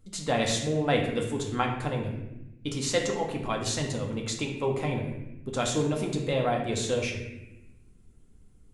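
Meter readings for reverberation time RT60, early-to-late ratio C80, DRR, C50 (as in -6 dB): 0.95 s, 7.5 dB, 0.0 dB, 5.0 dB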